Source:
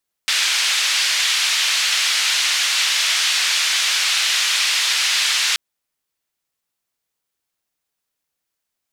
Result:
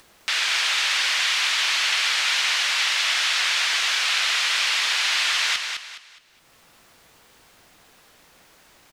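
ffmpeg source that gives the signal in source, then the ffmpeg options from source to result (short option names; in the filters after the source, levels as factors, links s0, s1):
-f lavfi -i "anoisesrc=c=white:d=5.28:r=44100:seed=1,highpass=f=2100,lowpass=f=4400,volume=-4.3dB"
-af "lowpass=f=2400:p=1,acompressor=mode=upward:threshold=0.0316:ratio=2.5,aecho=1:1:208|416|624|832:0.501|0.16|0.0513|0.0164"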